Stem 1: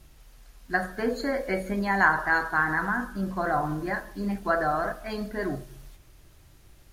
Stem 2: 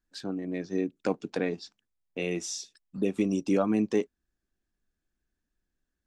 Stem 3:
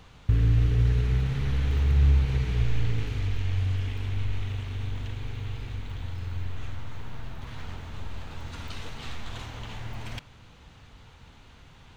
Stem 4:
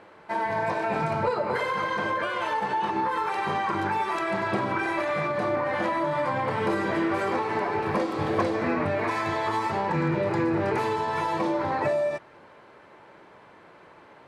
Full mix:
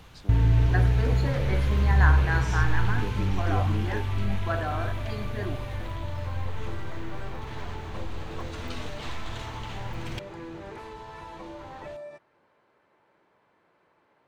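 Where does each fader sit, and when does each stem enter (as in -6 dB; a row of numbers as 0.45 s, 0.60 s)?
-6.0 dB, -10.0 dB, +1.0 dB, -15.5 dB; 0.00 s, 0.00 s, 0.00 s, 0.00 s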